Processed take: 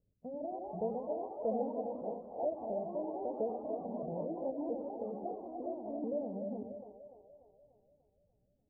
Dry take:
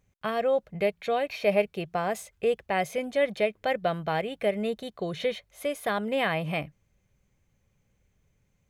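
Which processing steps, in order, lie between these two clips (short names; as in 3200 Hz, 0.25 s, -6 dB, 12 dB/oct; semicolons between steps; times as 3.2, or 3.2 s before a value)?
repeated pitch sweeps +7 st, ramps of 0.671 s; steep low-pass 600 Hz 48 dB/oct; low shelf 380 Hz -5.5 dB; split-band echo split 430 Hz, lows 91 ms, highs 0.294 s, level -5 dB; echoes that change speed 0.219 s, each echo +2 st, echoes 3, each echo -6 dB; gain -3.5 dB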